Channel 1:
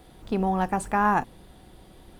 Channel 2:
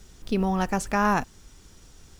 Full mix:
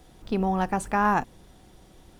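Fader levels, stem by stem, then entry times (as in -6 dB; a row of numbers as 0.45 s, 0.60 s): -3.0 dB, -11.0 dB; 0.00 s, 0.00 s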